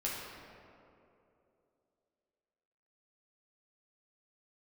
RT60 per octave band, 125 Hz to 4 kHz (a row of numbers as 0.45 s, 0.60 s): 2.7 s, 3.0 s, 3.2 s, 2.5 s, 1.9 s, 1.3 s